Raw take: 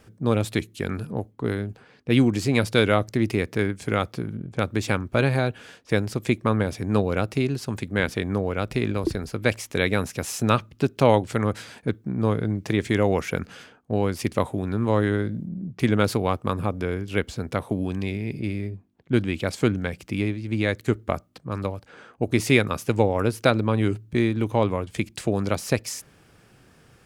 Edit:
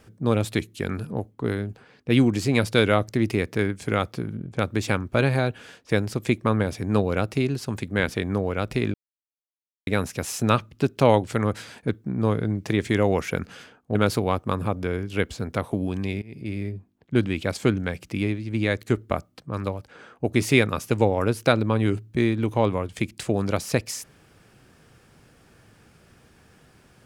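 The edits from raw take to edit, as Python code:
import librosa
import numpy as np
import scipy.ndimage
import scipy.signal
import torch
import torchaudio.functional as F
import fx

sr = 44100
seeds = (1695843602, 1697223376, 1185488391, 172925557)

y = fx.edit(x, sr, fx.silence(start_s=8.94, length_s=0.93),
    fx.cut(start_s=13.95, length_s=1.98),
    fx.fade_in_from(start_s=18.2, length_s=0.4, floor_db=-21.5), tone=tone)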